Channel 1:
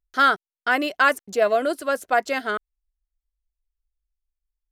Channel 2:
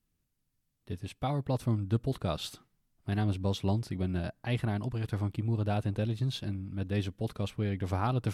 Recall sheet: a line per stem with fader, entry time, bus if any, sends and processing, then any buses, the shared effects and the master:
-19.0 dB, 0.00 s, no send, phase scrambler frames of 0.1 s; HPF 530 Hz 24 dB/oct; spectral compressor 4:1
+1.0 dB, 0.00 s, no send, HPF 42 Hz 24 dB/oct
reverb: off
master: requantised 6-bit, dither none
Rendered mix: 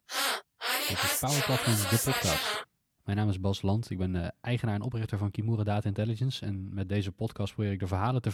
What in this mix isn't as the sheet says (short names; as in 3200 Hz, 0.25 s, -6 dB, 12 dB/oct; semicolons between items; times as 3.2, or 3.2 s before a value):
stem 1 -19.0 dB -> -9.5 dB; master: missing requantised 6-bit, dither none